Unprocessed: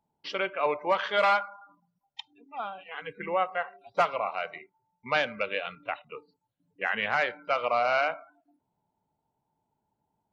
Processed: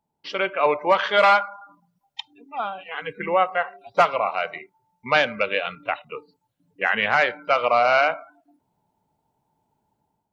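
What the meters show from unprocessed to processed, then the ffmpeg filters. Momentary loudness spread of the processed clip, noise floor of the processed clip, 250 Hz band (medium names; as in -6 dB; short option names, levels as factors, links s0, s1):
20 LU, -77 dBFS, +7.0 dB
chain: -af "dynaudnorm=f=140:g=5:m=2.37"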